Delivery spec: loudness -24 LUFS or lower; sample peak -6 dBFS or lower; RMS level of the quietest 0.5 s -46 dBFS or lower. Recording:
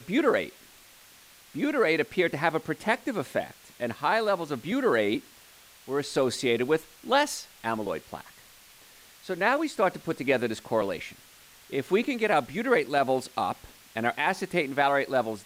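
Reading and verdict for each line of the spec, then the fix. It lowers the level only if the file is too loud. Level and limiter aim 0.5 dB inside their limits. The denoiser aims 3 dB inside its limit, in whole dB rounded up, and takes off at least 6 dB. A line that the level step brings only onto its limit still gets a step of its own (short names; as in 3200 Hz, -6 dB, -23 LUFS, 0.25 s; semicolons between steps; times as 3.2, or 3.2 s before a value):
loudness -27.5 LUFS: OK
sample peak -10.0 dBFS: OK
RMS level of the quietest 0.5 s -54 dBFS: OK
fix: none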